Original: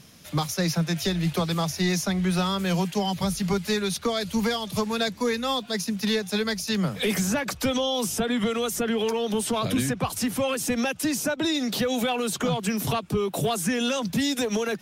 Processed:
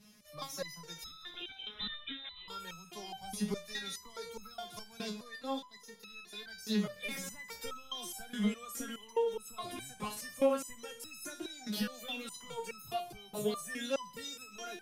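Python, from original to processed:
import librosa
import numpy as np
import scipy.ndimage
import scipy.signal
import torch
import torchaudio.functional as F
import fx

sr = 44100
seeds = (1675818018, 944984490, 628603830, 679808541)

y = fx.freq_invert(x, sr, carrier_hz=3800, at=(1.03, 2.48))
y = fx.level_steps(y, sr, step_db=14, at=(5.22, 6.5))
y = fx.echo_heads(y, sr, ms=64, heads='first and third', feedback_pct=61, wet_db=-17.5)
y = fx.resonator_held(y, sr, hz=4.8, low_hz=210.0, high_hz=1300.0)
y = y * librosa.db_to_amplitude(2.5)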